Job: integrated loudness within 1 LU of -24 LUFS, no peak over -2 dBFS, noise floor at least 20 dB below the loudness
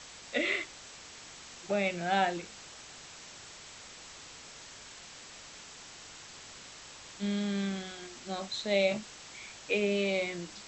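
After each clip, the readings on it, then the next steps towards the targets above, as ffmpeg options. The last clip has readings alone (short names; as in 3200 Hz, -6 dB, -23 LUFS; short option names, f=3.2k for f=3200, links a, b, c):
hum 50 Hz; harmonics up to 150 Hz; hum level -69 dBFS; noise floor -50 dBFS; noise floor target -53 dBFS; loudness -32.5 LUFS; peak -15.5 dBFS; loudness target -24.0 LUFS
-> -af "bandreject=f=50:t=h:w=4,bandreject=f=100:t=h:w=4,bandreject=f=150:t=h:w=4"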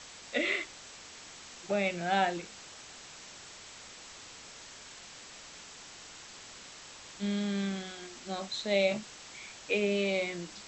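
hum none; noise floor -50 dBFS; noise floor target -53 dBFS
-> -af "afftdn=nr=6:nf=-50"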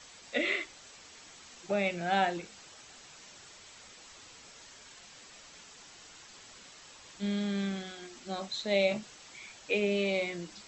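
noise floor -54 dBFS; loudness -32.5 LUFS; peak -15.5 dBFS; loudness target -24.0 LUFS
-> -af "volume=8.5dB"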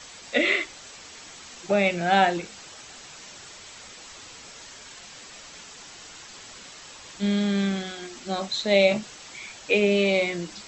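loudness -24.0 LUFS; peak -7.0 dBFS; noise floor -45 dBFS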